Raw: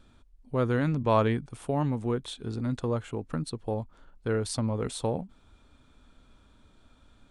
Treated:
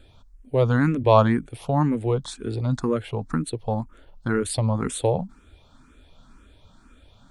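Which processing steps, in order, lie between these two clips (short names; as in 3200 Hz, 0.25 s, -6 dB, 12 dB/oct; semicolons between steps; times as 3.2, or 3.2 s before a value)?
endless phaser +2 Hz; gain +9 dB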